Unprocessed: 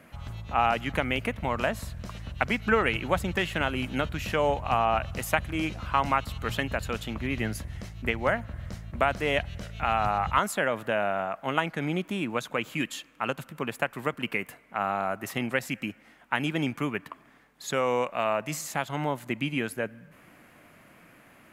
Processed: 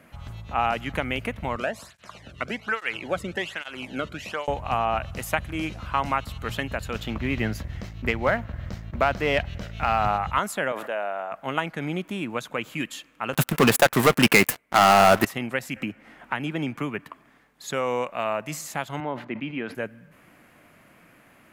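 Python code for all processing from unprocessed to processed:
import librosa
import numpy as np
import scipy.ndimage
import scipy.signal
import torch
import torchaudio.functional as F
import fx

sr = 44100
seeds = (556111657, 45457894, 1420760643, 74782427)

y = fx.chain(x, sr, fx.law_mismatch(coded='mu'),
    fx.lowpass(hz=9800.0, slope=12),
    fx.flanger_cancel(hz=1.2, depth_ms=1.3), at=(1.56, 4.48))
y = fx.chain(y, sr, fx.peak_eq(hz=9600.0, db=-13.0, octaves=0.69),
    fx.leveller(passes=1), at=(6.95, 10.17))
y = fx.chain(y, sr, fx.highpass(hz=560.0, slope=12),
    fx.tilt_shelf(db=5.0, hz=740.0),
    fx.sustainer(db_per_s=59.0), at=(10.72, 11.32))
y = fx.chain(y, sr, fx.leveller(passes=5),
    fx.high_shelf(hz=8200.0, db=7.0), at=(13.33, 15.25))
y = fx.chain(y, sr, fx.high_shelf(hz=3600.0, db=-6.0),
    fx.band_squash(depth_pct=70), at=(15.76, 16.99))
y = fx.chain(y, sr, fx.highpass(hz=190.0, slope=12),
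    fx.air_absorb(metres=300.0),
    fx.sustainer(db_per_s=120.0), at=(19.0, 19.75))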